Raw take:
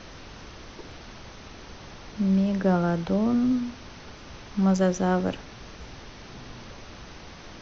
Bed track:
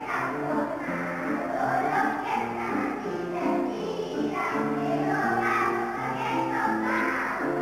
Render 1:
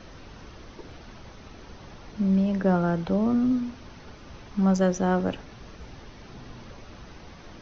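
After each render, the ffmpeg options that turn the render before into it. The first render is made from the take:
ffmpeg -i in.wav -af "afftdn=noise_reduction=6:noise_floor=-45" out.wav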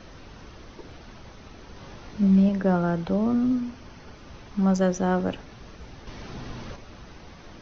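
ffmpeg -i in.wav -filter_complex "[0:a]asettb=1/sr,asplit=3[link_01][link_02][link_03];[link_01]atrim=end=1.744[link_04];[link_02]atrim=start=1.74:end=2.49,asetpts=PTS-STARTPTS,afade=type=in:duration=0.004:curve=qsin,afade=type=out:start_time=0.746:duration=0.004:curve=qsin,asplit=2[link_05][link_06];[link_06]adelay=20,volume=-2dB[link_07];[link_05][link_07]amix=inputs=2:normalize=0,atrim=end_sample=33075[link_08];[link_03]atrim=start=2.486[link_09];[link_04][link_08]acrossfade=duration=0.004:curve1=hsin:curve2=qsin[link_10];[link_10][link_09]acrossfade=duration=0.004:curve1=qsin:curve2=hsin,asettb=1/sr,asplit=3[link_11][link_12][link_13];[link_11]atrim=end=3.544[link_14];[link_12]atrim=start=3.54:end=4.15,asetpts=PTS-STARTPTS,afade=type=in:duration=0.004:curve=qsin,afade=type=out:start_time=0.606:duration=0.004:curve=qsin,bandreject=frequency=3800:width=12[link_15];[link_13]atrim=start=4.146[link_16];[link_14][link_15]acrossfade=duration=0.004:curve1=hsin:curve2=qsin[link_17];[link_17][link_16]acrossfade=duration=0.004:curve1=qsin:curve2=hsin,asettb=1/sr,asplit=3[link_18][link_19][link_20];[link_18]atrim=end=6.074[link_21];[link_19]atrim=start=6.07:end=6.76,asetpts=PTS-STARTPTS,afade=type=in:duration=0.004:curve=qsin,afade=type=out:start_time=0.686:duration=0.004:curve=qsin,acontrast=46[link_22];[link_20]atrim=start=6.756[link_23];[link_21][link_22]acrossfade=duration=0.004:curve1=hsin:curve2=qsin[link_24];[link_24][link_23]acrossfade=duration=0.004:curve1=qsin:curve2=hsin" out.wav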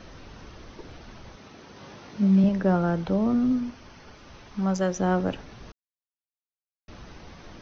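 ffmpeg -i in.wav -filter_complex "[0:a]asettb=1/sr,asplit=3[link_01][link_02][link_03];[link_01]atrim=end=1.364[link_04];[link_02]atrim=start=1.36:end=2.44,asetpts=PTS-STARTPTS,afade=type=in:duration=0.004:curve=qsin,afade=type=out:start_time=1.076:duration=0.004:curve=qsin,highpass=130[link_05];[link_03]atrim=start=2.436[link_06];[link_04][link_05]acrossfade=duration=0.004:curve1=hsin:curve2=qsin[link_07];[link_07][link_06]acrossfade=duration=0.004:curve1=qsin:curve2=hsin,asettb=1/sr,asplit=3[link_08][link_09][link_10];[link_08]atrim=end=3.704[link_11];[link_09]atrim=start=3.7:end=4.99,asetpts=PTS-STARTPTS,afade=type=in:duration=0.004:curve=qsin,afade=type=out:start_time=1.286:duration=0.004:curve=qsin,lowshelf=frequency=470:gain=-5[link_12];[link_10]atrim=start=4.986[link_13];[link_11][link_12]acrossfade=duration=0.004:curve1=hsin:curve2=qsin[link_14];[link_14][link_13]acrossfade=duration=0.004:curve1=qsin:curve2=hsin,asplit=3[link_15][link_16][link_17];[link_15]atrim=end=5.72,asetpts=PTS-STARTPTS,afade=type=out:start_time=5.716:duration=0.004:curve=hsin[link_18];[link_16]atrim=start=5.72:end=6.88,asetpts=PTS-STARTPTS,volume=0[link_19];[link_17]atrim=start=6.88,asetpts=PTS-STARTPTS,afade=type=in:duration=0.004:curve=hsin[link_20];[link_18][link_19][link_20]concat=n=3:v=0:a=1" out.wav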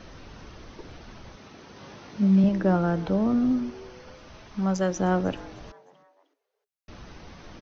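ffmpeg -i in.wav -filter_complex "[0:a]asplit=4[link_01][link_02][link_03][link_04];[link_02]adelay=308,afreqshift=130,volume=-21.5dB[link_05];[link_03]adelay=616,afreqshift=260,volume=-29.5dB[link_06];[link_04]adelay=924,afreqshift=390,volume=-37.4dB[link_07];[link_01][link_05][link_06][link_07]amix=inputs=4:normalize=0" out.wav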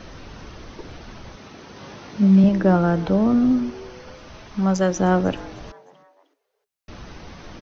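ffmpeg -i in.wav -af "volume=5.5dB" out.wav

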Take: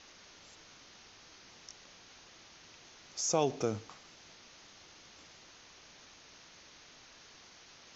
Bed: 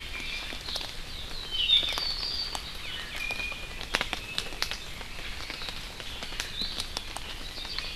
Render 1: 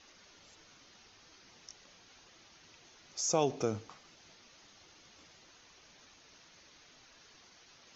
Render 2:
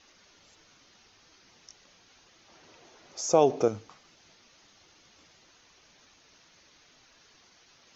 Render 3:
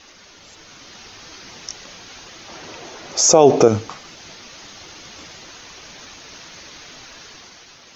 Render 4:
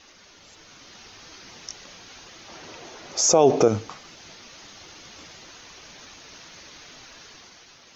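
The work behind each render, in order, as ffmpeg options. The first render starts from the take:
ffmpeg -i in.wav -af "afftdn=noise_reduction=6:noise_floor=-57" out.wav
ffmpeg -i in.wav -filter_complex "[0:a]asettb=1/sr,asplit=3[link_01][link_02][link_03];[link_01]atrim=end=2.484[link_04];[link_02]atrim=start=2.48:end=3.68,asetpts=PTS-STARTPTS,afade=type=in:duration=0.004:curve=qsin,afade=type=out:start_time=1.196:duration=0.004:curve=qsin,equalizer=frequency=540:width=0.52:gain=10[link_05];[link_03]atrim=start=3.676[link_06];[link_04][link_05]acrossfade=duration=0.004:curve1=hsin:curve2=qsin[link_07];[link_07][link_06]acrossfade=duration=0.004:curve1=qsin:curve2=hsin" out.wav
ffmpeg -i in.wav -af "dynaudnorm=framelen=180:gausssize=9:maxgain=6.5dB,alimiter=level_in=13.5dB:limit=-1dB:release=50:level=0:latency=1" out.wav
ffmpeg -i in.wav -af "volume=-5.5dB" out.wav

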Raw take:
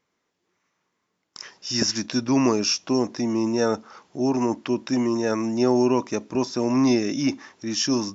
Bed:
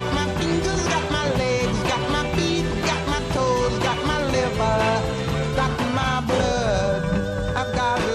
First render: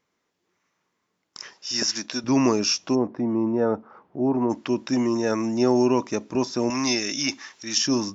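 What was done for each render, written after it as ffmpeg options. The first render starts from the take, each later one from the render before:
ffmpeg -i in.wav -filter_complex "[0:a]asettb=1/sr,asplit=3[link_01][link_02][link_03];[link_01]atrim=end=1.534[link_04];[link_02]atrim=start=1.53:end=2.24,asetpts=PTS-STARTPTS,afade=type=in:duration=0.004:curve=qsin,afade=type=out:start_time=0.706:duration=0.004:curve=qsin,highpass=frequency=520:poles=1[link_05];[link_03]atrim=start=2.236[link_06];[link_04][link_05]acrossfade=duration=0.004:curve1=hsin:curve2=qsin[link_07];[link_07][link_06]acrossfade=duration=0.004:curve1=qsin:curve2=hsin,asplit=3[link_08][link_09][link_10];[link_08]afade=type=out:start_time=2.94:duration=0.02[link_11];[link_09]lowpass=1200,afade=type=in:start_time=2.94:duration=0.02,afade=type=out:start_time=4.49:duration=0.02[link_12];[link_10]afade=type=in:start_time=4.49:duration=0.02[link_13];[link_11][link_12][link_13]amix=inputs=3:normalize=0,asettb=1/sr,asplit=3[link_14][link_15][link_16];[link_14]atrim=end=6.704[link_17];[link_15]atrim=start=6.7:end=7.78,asetpts=PTS-STARTPTS,afade=type=in:duration=0.004:curve=qsin,afade=type=out:start_time=1.076:duration=0.004:curve=qsin,tiltshelf=frequency=1100:gain=-8.5[link_18];[link_16]atrim=start=7.776[link_19];[link_17][link_18]acrossfade=duration=0.004:curve1=hsin:curve2=qsin[link_20];[link_20][link_19]acrossfade=duration=0.004:curve1=qsin:curve2=hsin" out.wav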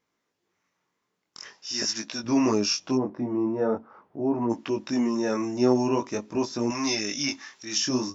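ffmpeg -i in.wav -af "flanger=delay=17.5:depth=6.6:speed=0.45" out.wav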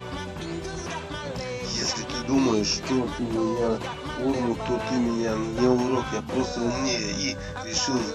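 ffmpeg -i in.wav -i bed.wav -filter_complex "[1:a]volume=-11dB[link_01];[0:a][link_01]amix=inputs=2:normalize=0" out.wav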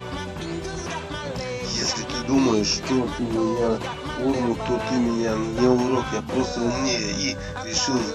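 ffmpeg -i in.wav -af "volume=2.5dB" out.wav

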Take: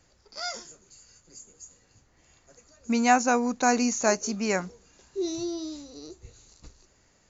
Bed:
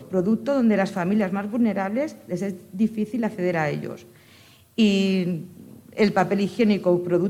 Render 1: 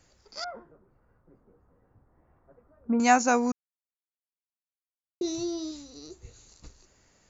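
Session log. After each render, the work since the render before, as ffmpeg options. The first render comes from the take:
ffmpeg -i in.wav -filter_complex "[0:a]asettb=1/sr,asplit=3[link_01][link_02][link_03];[link_01]atrim=end=0.444[link_04];[link_02]atrim=start=0.44:end=3,asetpts=PTS-STARTPTS,afade=type=in:duration=0.004:curve=qsin,afade=type=out:start_time=2.556:duration=0.004:curve=qsin,lowpass=frequency=1300:width=0.5412,lowpass=frequency=1300:width=1.3066[link_05];[link_03]atrim=start=2.996[link_06];[link_04][link_05]acrossfade=duration=0.004:curve1=hsin:curve2=qsin[link_07];[link_07][link_06]acrossfade=duration=0.004:curve1=qsin:curve2=hsin,asettb=1/sr,asplit=3[link_08][link_09][link_10];[link_08]atrim=end=5.714[link_11];[link_09]atrim=start=5.71:end=6.11,asetpts=PTS-STARTPTS,afade=type=in:duration=0.004:curve=qsin,afade=type=out:start_time=0.396:duration=0.004:curve=qsin,equalizer=frequency=520:width=0.88:gain=-5.5[link_12];[link_10]atrim=start=6.106[link_13];[link_11][link_12]acrossfade=duration=0.004:curve1=hsin:curve2=qsin[link_14];[link_14][link_13]acrossfade=duration=0.004:curve1=qsin:curve2=hsin,asplit=3[link_15][link_16][link_17];[link_15]atrim=end=3.52,asetpts=PTS-STARTPTS,afade=type=out:start_time=3.516:duration=0.004:curve=hsin[link_18];[link_16]atrim=start=3.52:end=5.21,asetpts=PTS-STARTPTS,volume=0[link_19];[link_17]atrim=start=5.21,asetpts=PTS-STARTPTS,afade=type=in:duration=0.004:curve=hsin[link_20];[link_18][link_19][link_20]concat=n=3:v=0:a=1" out.wav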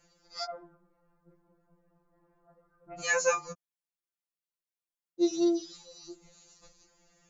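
ffmpeg -i in.wav -af "afftfilt=real='re*2.83*eq(mod(b,8),0)':imag='im*2.83*eq(mod(b,8),0)':win_size=2048:overlap=0.75" out.wav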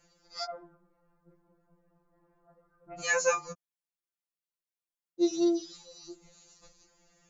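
ffmpeg -i in.wav -af anull out.wav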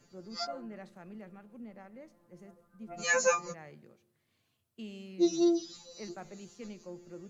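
ffmpeg -i in.wav -i bed.wav -filter_complex "[1:a]volume=-26dB[link_01];[0:a][link_01]amix=inputs=2:normalize=0" out.wav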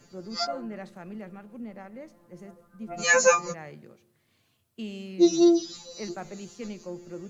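ffmpeg -i in.wav -af "volume=7.5dB" out.wav

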